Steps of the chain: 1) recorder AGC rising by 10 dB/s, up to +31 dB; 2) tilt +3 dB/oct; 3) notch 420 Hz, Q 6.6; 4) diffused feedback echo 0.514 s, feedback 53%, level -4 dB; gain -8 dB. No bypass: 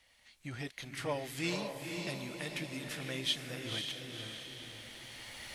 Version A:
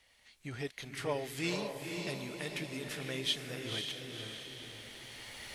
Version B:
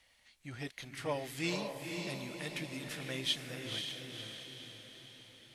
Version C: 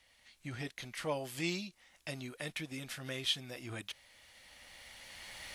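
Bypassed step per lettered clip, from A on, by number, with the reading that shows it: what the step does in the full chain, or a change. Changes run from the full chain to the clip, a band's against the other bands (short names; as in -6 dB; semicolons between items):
3, 500 Hz band +2.0 dB; 1, momentary loudness spread change +4 LU; 4, echo-to-direct -2.5 dB to none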